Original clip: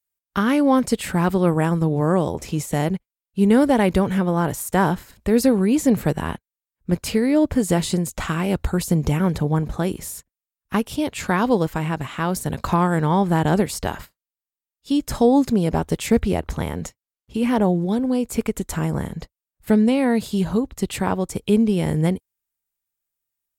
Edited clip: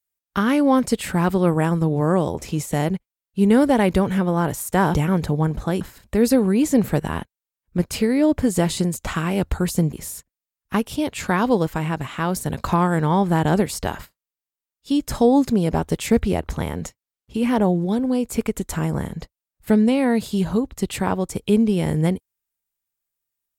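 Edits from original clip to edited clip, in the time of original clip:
9.06–9.93 s: move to 4.94 s

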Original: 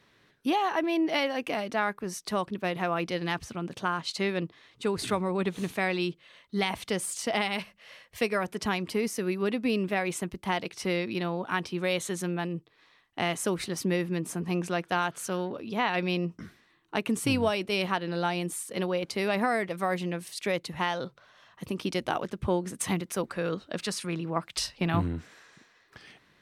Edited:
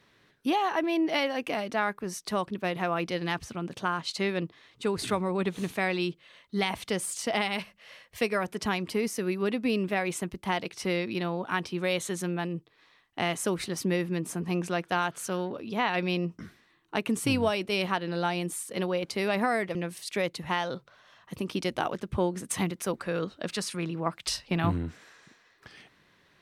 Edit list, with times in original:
19.75–20.05 s: delete

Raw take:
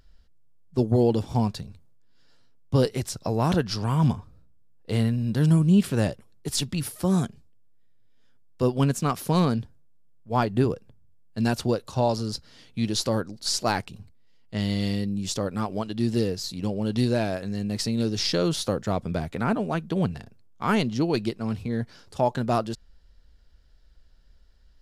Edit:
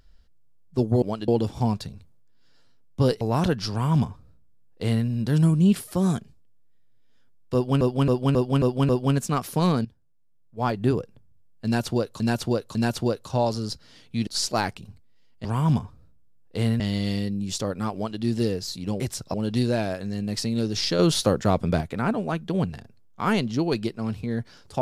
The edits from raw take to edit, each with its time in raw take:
2.95–3.29 s: move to 16.76 s
3.79–5.14 s: copy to 14.56 s
5.88–6.88 s: delete
8.62–8.89 s: loop, 6 plays
9.58–10.63 s: fade in, from -15 dB
11.38–11.93 s: loop, 3 plays
12.90–13.38 s: delete
15.70–15.96 s: copy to 1.02 s
18.41–19.23 s: gain +5 dB

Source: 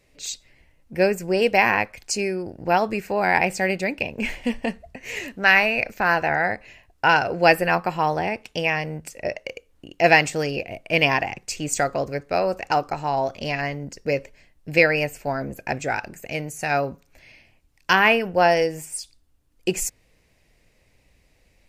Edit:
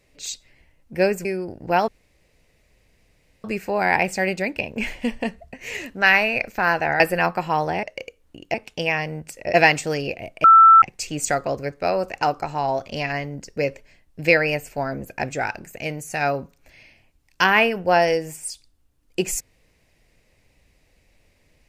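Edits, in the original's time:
1.25–2.23 s: delete
2.86 s: insert room tone 1.56 s
6.42–7.49 s: delete
9.32–10.03 s: move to 8.32 s
10.93–11.31 s: bleep 1.33 kHz -6.5 dBFS

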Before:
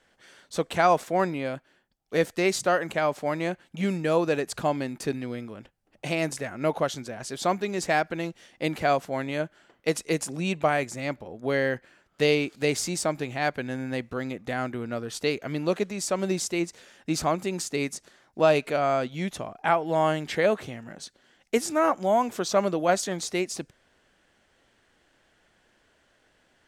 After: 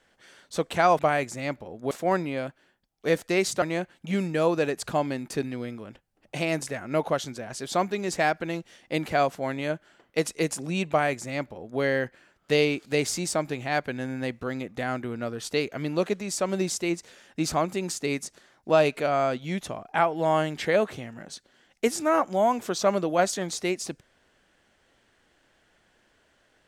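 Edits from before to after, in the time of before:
2.70–3.32 s: delete
10.59–11.51 s: copy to 0.99 s

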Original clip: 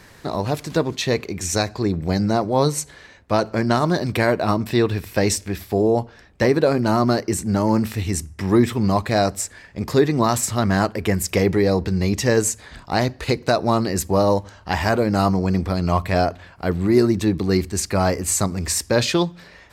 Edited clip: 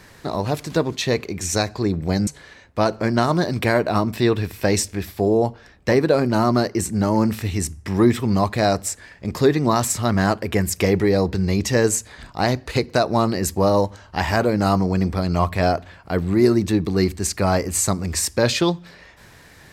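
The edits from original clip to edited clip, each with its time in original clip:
2.27–2.80 s: delete

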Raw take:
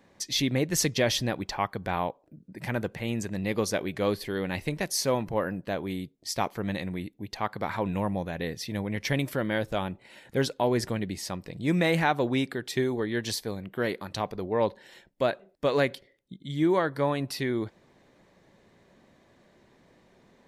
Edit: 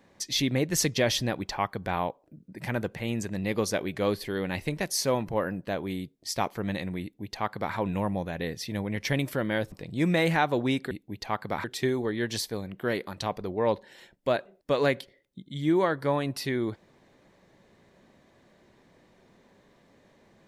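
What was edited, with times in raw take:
7.02–7.75 s: copy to 12.58 s
9.72–11.39 s: delete

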